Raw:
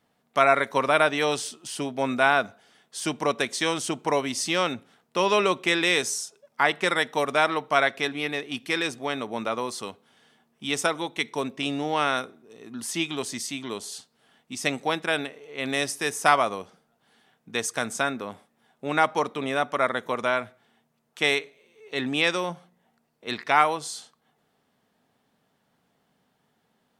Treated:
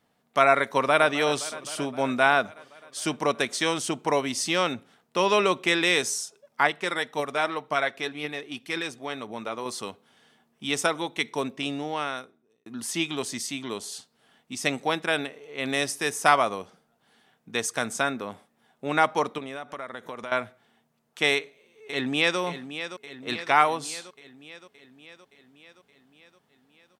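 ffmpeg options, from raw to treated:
-filter_complex "[0:a]asplit=2[a][b];[b]afade=t=in:st=0.68:d=0.01,afade=t=out:st=1.12:d=0.01,aecho=0:1:260|520|780|1040|1300|1560|1820|2080|2340|2600:0.16788|0.12591|0.0944327|0.0708245|0.0531184|0.0398388|0.0298791|0.0224093|0.016807|0.0126052[c];[a][c]amix=inputs=2:normalize=0,asettb=1/sr,asplit=3[d][e][f];[d]atrim=end=6.674[g];[e]atrim=start=6.67:end=9.66,asetpts=PTS-STARTPTS,afade=t=in:d=0.004:c=qsin,afade=t=out:st=2.986:d=0.004:c=qsin,flanger=delay=0:depth=3.4:regen=73:speed=1.9:shape=triangular[h];[f]atrim=start=9.656[i];[g][h]acrossfade=d=0.004:c1=hsin:c2=qsin[j];[j][i]acrossfade=d=0.004:c1=qsin:c2=hsin,asettb=1/sr,asplit=3[k][l][m];[k]atrim=end=19.384[n];[l]atrim=start=19.38:end=20.32,asetpts=PTS-STARTPTS,afade=t=in:d=0.004:c=qsin,afade=t=out:st=0.936:d=0.004:c=qsin,acompressor=threshold=-34dB:ratio=4:attack=3.2:release=140:knee=1:detection=peak[o];[m]atrim=start=20.316[p];[n][o]acrossfade=d=0.004:c1=hsin:c2=qsin[q];[q][p]acrossfade=d=0.004:c1=qsin:c2=hsin,asplit=2[r][s];[s]afade=t=in:st=21.32:d=0.01,afade=t=out:st=22.39:d=0.01,aecho=0:1:570|1140|1710|2280|2850|3420|3990|4560:0.281838|0.183195|0.119077|0.0773998|0.0503099|0.0327014|0.0212559|0.0138164[t];[r][t]amix=inputs=2:normalize=0,asplit=2[u][v];[u]atrim=end=12.66,asetpts=PTS-STARTPTS,afade=t=out:st=11.41:d=1.25[w];[v]atrim=start=12.66,asetpts=PTS-STARTPTS,afade=t=in:d=0.004:c=hsin[x];[w][x]concat=n=2:v=0:a=1"

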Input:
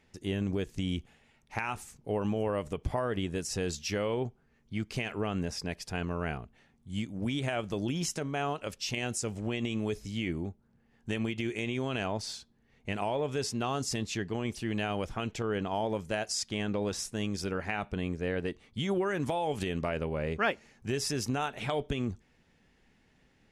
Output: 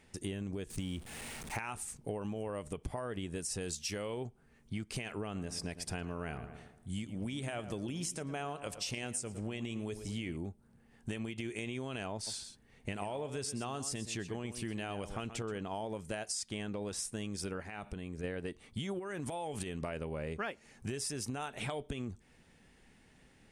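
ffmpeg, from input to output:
-filter_complex "[0:a]asettb=1/sr,asplit=3[a][b][c];[a]atrim=end=0.704[d];[b]atrim=start=0.7:end=1.57,asetpts=PTS-STARTPTS,afade=t=in:d=0.004:c=qsin,afade=t=out:st=0.866:d=0.004:c=qsin,aeval=exprs='val(0)+0.5*0.00631*sgn(val(0))':c=same[e];[c]atrim=start=1.566[f];[d][e]acrossfade=d=0.004:c1=hsin:c2=qsin[g];[g][f]acrossfade=d=0.004:c1=qsin:c2=hsin,asettb=1/sr,asplit=3[h][i][j];[h]atrim=end=3.614[k];[i]atrim=start=3.61:end=4.27,asetpts=PTS-STARTPTS,afade=t=in:d=0.004:c=qsin,afade=t=out:st=0.656:d=0.004:c=qsin,highshelf=f=4.4k:g=6[l];[j]atrim=start=4.266[m];[k][l]acrossfade=d=0.004:c1=hsin:c2=qsin[n];[n][m]acrossfade=d=0.004:c1=qsin:c2=hsin,asettb=1/sr,asplit=3[o][p][q];[o]atrim=end=5.244[r];[p]atrim=start=5.24:end=10.37,asetpts=PTS-STARTPTS,afade=t=in:d=0.004:c=qsin,afade=t=out:st=5.126:d=0.004:c=qsin,asplit=2[s][t];[t]adelay=111,lowpass=f=2.2k:p=1,volume=-13.5dB,asplit=2[u][v];[v]adelay=111,lowpass=f=2.2k:p=1,volume=0.48,asplit=2[w][x];[x]adelay=111,lowpass=f=2.2k:p=1,volume=0.48,asplit=2[y][z];[z]adelay=111,lowpass=f=2.2k:p=1,volume=0.48,asplit=2[aa][ab];[ab]adelay=111,lowpass=f=2.2k:p=1,volume=0.48[ac];[s][u][w][y][aa][ac]amix=inputs=6:normalize=0,atrim=end_sample=226233[ad];[q]atrim=start=10.366[ae];[r][ad]acrossfade=d=0.004:c1=hsin:c2=qsin[af];[af][ae]acrossfade=d=0.004:c1=qsin:c2=hsin,asplit=3[ag][ah][ai];[ag]afade=t=out:st=12.26:d=0.02[aj];[ah]aecho=1:1:127:0.237,afade=t=in:st=12.26:d=0.02,afade=t=out:st=15.57:d=0.02[ak];[ai]afade=t=in:st=15.57:d=0.02[al];[aj][ak][al]amix=inputs=3:normalize=0,asplit=3[am][an][ao];[am]afade=t=out:st=17.62:d=0.02[ap];[an]acompressor=threshold=-40dB:ratio=6:attack=3.2:release=140:knee=1:detection=peak,afade=t=in:st=17.62:d=0.02,afade=t=out:st=18.23:d=0.02[aq];[ao]afade=t=in:st=18.23:d=0.02[ar];[ap][aq][ar]amix=inputs=3:normalize=0,asettb=1/sr,asplit=3[as][at][au];[as]atrim=end=18.994[av];[at]atrim=start=18.99:end=19.83,asetpts=PTS-STARTPTS,afade=t=in:d=0.004:c=qsin,afade=t=out:st=0.836:d=0.004:c=qsin,acompressor=threshold=-31dB:ratio=6:attack=3.2:release=140:knee=1:detection=peak[aw];[au]atrim=start=19.826[ax];[av][aw]acrossfade=d=0.004:c1=hsin:c2=qsin[ay];[ay][ax]acrossfade=d=0.004:c1=qsin:c2=hsin,equalizer=f=8.9k:w=3.4:g=13,acompressor=threshold=-39dB:ratio=6,volume=3dB"

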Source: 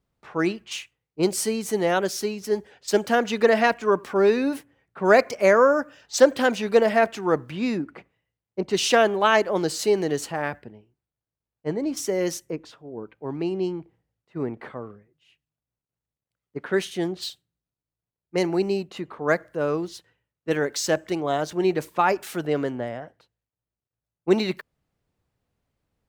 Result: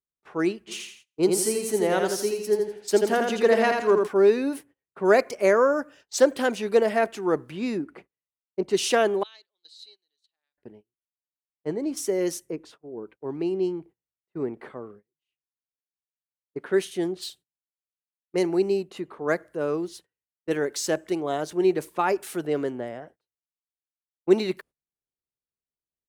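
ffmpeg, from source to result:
-filter_complex "[0:a]asplit=3[a][b][c];[a]afade=t=out:st=0.67:d=0.02[d];[b]aecho=1:1:83|166|249|332|415:0.631|0.227|0.0818|0.0294|0.0106,afade=t=in:st=0.67:d=0.02,afade=t=out:st=4.06:d=0.02[e];[c]afade=t=in:st=4.06:d=0.02[f];[d][e][f]amix=inputs=3:normalize=0,asettb=1/sr,asplit=3[g][h][i];[g]atrim=end=9.234[j];[h]atrim=start=9.23:end=10.58,asetpts=PTS-STARTPTS,afade=t=in:d=0.004:c=qsin,afade=t=out:st=1.346:d=0.004:c=qsin,bandpass=f=3.9k:t=q:w=16[k];[i]atrim=start=10.576[l];[j][k]acrossfade=d=0.004:c1=hsin:c2=qsin[m];[m][l]acrossfade=d=0.004:c1=qsin:c2=hsin,equalizer=f=430:t=o:w=0.65:g=-5.5,agate=range=-22dB:threshold=-48dB:ratio=16:detection=peak,equalizer=f=100:t=o:w=0.67:g=-5,equalizer=f=400:t=o:w=0.67:g=11,equalizer=f=10k:t=o:w=0.67:g=8,volume=-4.5dB"

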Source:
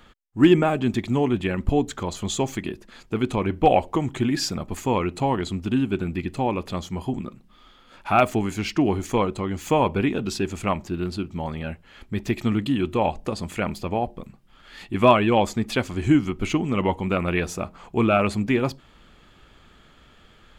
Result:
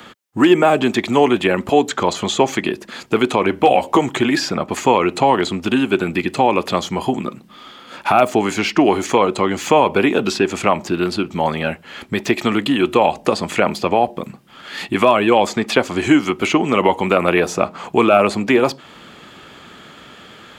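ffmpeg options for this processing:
-filter_complex "[0:a]asettb=1/sr,asplit=3[a][b][c];[a]atrim=end=3.574[d];[b]atrim=start=3.57:end=4.01,asetpts=PTS-STARTPTS,afade=t=in:d=0.004:c=qsin,afade=t=out:st=0.436:d=0.004:c=qsin,asplit=2[e][f];[f]adelay=15,volume=-6dB[g];[e][g]amix=inputs=2:normalize=0,atrim=end_sample=19404[h];[c]atrim=start=4.006[i];[d][h]acrossfade=d=0.004:c1=hsin:c2=qsin[j];[j][i]acrossfade=d=0.004:c1=qsin:c2=hsin,acrossover=split=390|1200|2900|7300[k][l][m][n][o];[k]acompressor=threshold=-36dB:ratio=4[p];[l]acompressor=threshold=-24dB:ratio=4[q];[m]acompressor=threshold=-38dB:ratio=4[r];[n]acompressor=threshold=-43dB:ratio=4[s];[o]acompressor=threshold=-58dB:ratio=4[t];[p][q][r][s][t]amix=inputs=5:normalize=0,highpass=160,alimiter=level_in=15.5dB:limit=-1dB:release=50:level=0:latency=1,volume=-1dB"

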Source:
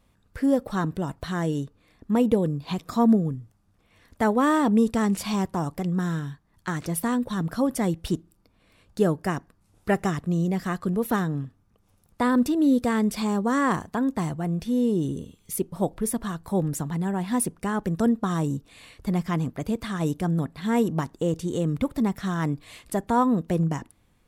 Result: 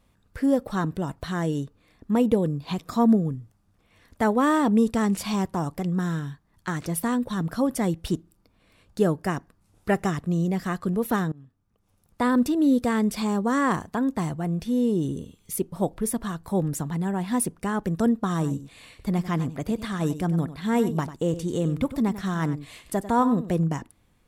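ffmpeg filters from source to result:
-filter_complex "[0:a]asettb=1/sr,asplit=3[a][b][c];[a]atrim=end=18.304[d];[b]atrim=start=18.3:end=23.5,asetpts=PTS-STARTPTS,afade=t=in:d=0.004:c=qsin,afade=t=out:st=5.196:d=0.004:c=qsin,aecho=1:1:96:0.211,atrim=end_sample=229320[e];[c]atrim=start=23.496[f];[d][e]acrossfade=d=0.004:c1=hsin:c2=qsin[g];[g][f]acrossfade=d=0.004:c1=qsin:c2=hsin,asplit=2[h][i];[h]atrim=end=11.32,asetpts=PTS-STARTPTS,afade=t=out:st=11.316:d=0.004:c=hsin:silence=0.0630957[j];[i]atrim=start=11.32,asetpts=PTS-STARTPTS,afade=t=in:d=0.94:silence=0.0630957[k];[j][k]concat=n=2:v=0:a=1"

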